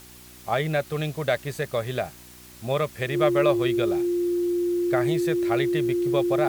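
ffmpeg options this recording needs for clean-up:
ffmpeg -i in.wav -af "bandreject=frequency=61.2:width_type=h:width=4,bandreject=frequency=122.4:width_type=h:width=4,bandreject=frequency=183.6:width_type=h:width=4,bandreject=frequency=244.8:width_type=h:width=4,bandreject=frequency=306:width_type=h:width=4,bandreject=frequency=367.2:width_type=h:width=4,bandreject=frequency=350:width=30,afwtdn=0.004" out.wav

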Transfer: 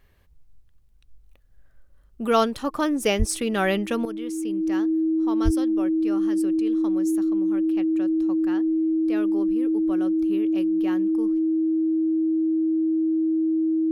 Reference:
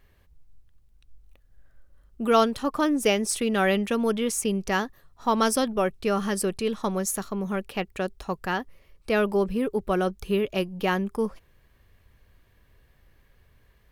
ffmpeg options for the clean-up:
ffmpeg -i in.wav -filter_complex "[0:a]bandreject=frequency=320:width=30,asplit=3[link_01][link_02][link_03];[link_01]afade=type=out:start_time=3.18:duration=0.02[link_04];[link_02]highpass=frequency=140:width=0.5412,highpass=frequency=140:width=1.3066,afade=type=in:start_time=3.18:duration=0.02,afade=type=out:start_time=3.3:duration=0.02[link_05];[link_03]afade=type=in:start_time=3.3:duration=0.02[link_06];[link_04][link_05][link_06]amix=inputs=3:normalize=0,asplit=3[link_07][link_08][link_09];[link_07]afade=type=out:start_time=5.44:duration=0.02[link_10];[link_08]highpass=frequency=140:width=0.5412,highpass=frequency=140:width=1.3066,afade=type=in:start_time=5.44:duration=0.02,afade=type=out:start_time=5.56:duration=0.02[link_11];[link_09]afade=type=in:start_time=5.56:duration=0.02[link_12];[link_10][link_11][link_12]amix=inputs=3:normalize=0,asetnsamples=nb_out_samples=441:pad=0,asendcmd='4.05 volume volume 11.5dB',volume=0dB" out.wav

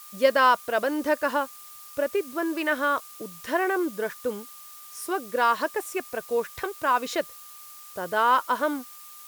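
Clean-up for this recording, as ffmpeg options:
ffmpeg -i in.wav -af "bandreject=frequency=1200:width=30,afftdn=noise_reduction=25:noise_floor=-45" out.wav

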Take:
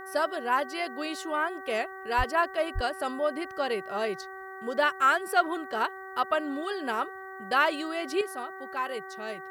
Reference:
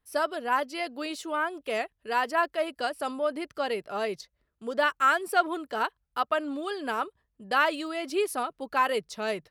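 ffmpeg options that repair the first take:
ffmpeg -i in.wav -filter_complex "[0:a]bandreject=frequency=381.8:width_type=h:width=4,bandreject=frequency=763.6:width_type=h:width=4,bandreject=frequency=1145.4:width_type=h:width=4,bandreject=frequency=1527.2:width_type=h:width=4,bandreject=frequency=1909:width_type=h:width=4,asplit=3[link_01][link_02][link_03];[link_01]afade=type=out:start_time=2.17:duration=0.02[link_04];[link_02]highpass=frequency=140:width=0.5412,highpass=frequency=140:width=1.3066,afade=type=in:start_time=2.17:duration=0.02,afade=type=out:start_time=2.29:duration=0.02[link_05];[link_03]afade=type=in:start_time=2.29:duration=0.02[link_06];[link_04][link_05][link_06]amix=inputs=3:normalize=0,asplit=3[link_07][link_08][link_09];[link_07]afade=type=out:start_time=2.74:duration=0.02[link_10];[link_08]highpass=frequency=140:width=0.5412,highpass=frequency=140:width=1.3066,afade=type=in:start_time=2.74:duration=0.02,afade=type=out:start_time=2.86:duration=0.02[link_11];[link_09]afade=type=in:start_time=2.86:duration=0.02[link_12];[link_10][link_11][link_12]amix=inputs=3:normalize=0,agate=range=-21dB:threshold=-34dB,asetnsamples=nb_out_samples=441:pad=0,asendcmd='8.21 volume volume 7.5dB',volume=0dB" out.wav

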